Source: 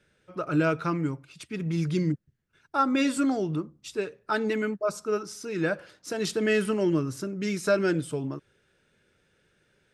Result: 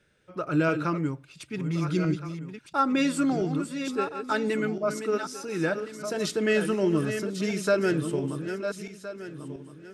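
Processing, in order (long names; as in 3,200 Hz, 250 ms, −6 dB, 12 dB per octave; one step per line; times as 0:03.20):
feedback delay that plays each chunk backwards 683 ms, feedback 46%, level −8 dB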